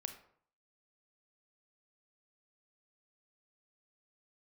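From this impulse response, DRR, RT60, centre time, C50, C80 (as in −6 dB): 7.0 dB, 0.60 s, 12 ms, 9.5 dB, 13.0 dB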